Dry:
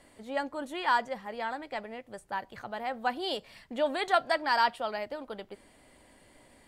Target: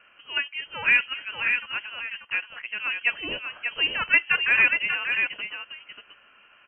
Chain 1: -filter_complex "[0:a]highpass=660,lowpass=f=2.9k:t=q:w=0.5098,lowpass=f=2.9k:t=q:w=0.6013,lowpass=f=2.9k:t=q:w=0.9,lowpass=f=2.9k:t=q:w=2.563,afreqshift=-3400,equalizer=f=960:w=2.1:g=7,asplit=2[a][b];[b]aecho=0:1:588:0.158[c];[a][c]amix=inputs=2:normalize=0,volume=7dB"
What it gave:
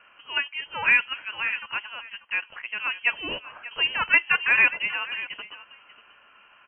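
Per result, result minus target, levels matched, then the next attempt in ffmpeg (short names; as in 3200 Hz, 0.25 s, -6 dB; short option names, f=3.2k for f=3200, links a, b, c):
echo-to-direct -10 dB; 1000 Hz band +3.0 dB
-filter_complex "[0:a]highpass=660,lowpass=f=2.9k:t=q:w=0.5098,lowpass=f=2.9k:t=q:w=0.6013,lowpass=f=2.9k:t=q:w=0.9,lowpass=f=2.9k:t=q:w=2.563,afreqshift=-3400,equalizer=f=960:w=2.1:g=7,asplit=2[a][b];[b]aecho=0:1:588:0.501[c];[a][c]amix=inputs=2:normalize=0,volume=7dB"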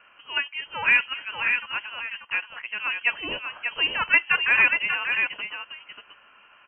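1000 Hz band +3.5 dB
-filter_complex "[0:a]highpass=660,lowpass=f=2.9k:t=q:w=0.5098,lowpass=f=2.9k:t=q:w=0.6013,lowpass=f=2.9k:t=q:w=0.9,lowpass=f=2.9k:t=q:w=2.563,afreqshift=-3400,asplit=2[a][b];[b]aecho=0:1:588:0.501[c];[a][c]amix=inputs=2:normalize=0,volume=7dB"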